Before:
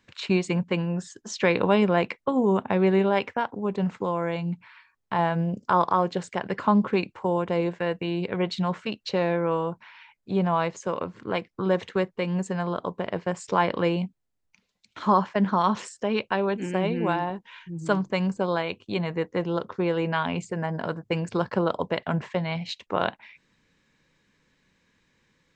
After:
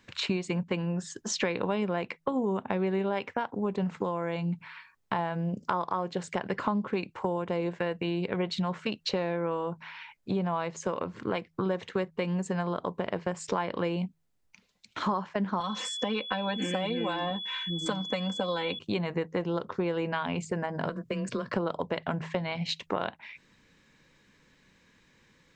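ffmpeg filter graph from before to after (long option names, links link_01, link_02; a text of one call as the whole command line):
ffmpeg -i in.wav -filter_complex "[0:a]asettb=1/sr,asplit=3[link_01][link_02][link_03];[link_01]atrim=end=15.604[link_04];[link_02]atrim=start=15.6:end=18.79,asetpts=PTS-STARTPTS,afade=type=in:duration=0.004:curve=qsin,afade=type=out:start_time=3.186:duration=0.004:curve=qsin,aecho=1:1:3.9:0.93,atrim=end_sample=140679,acrossover=split=280|2800[link_05][link_06][link_07];[link_05]acompressor=threshold=-36dB:ratio=4[link_08];[link_06]acompressor=threshold=-28dB:ratio=4[link_09];[link_07]acompressor=threshold=-41dB:ratio=4[link_10];[link_08][link_09][link_10]amix=inputs=3:normalize=0,aeval=exprs='val(0)+0.0126*sin(2*PI*3400*n/s)':channel_layout=same[link_11];[link_03]atrim=start=18.786[link_12];[link_04][link_11]acrossfade=duration=0.004:curve1=hsin:curve2=qsin[link_13];[link_13][link_12]acrossfade=duration=0.004:curve1=qsin:curve2=hsin,asettb=1/sr,asplit=3[link_14][link_15][link_16];[link_14]atrim=end=20.894[link_17];[link_15]atrim=start=20.89:end=21.54,asetpts=PTS-STARTPTS,afade=type=in:duration=0.004:curve=qsin,afade=type=out:start_time=0.646:duration=0.004:curve=qsin,acompressor=threshold=-32dB:ratio=3:attack=3.2:release=140:knee=1:detection=peak,asuperstop=centerf=790:order=8:qfactor=3.1,afreqshift=18[link_18];[link_16]atrim=start=21.536[link_19];[link_17][link_18]acrossfade=duration=0.004:curve1=hsin:curve2=qsin[link_20];[link_20][link_19]acrossfade=duration=0.004:curve1=qsin:curve2=hsin,acompressor=threshold=-32dB:ratio=5,bandreject=frequency=80.87:width_type=h:width=4,bandreject=frequency=161.74:width_type=h:width=4,volume=4.5dB" out.wav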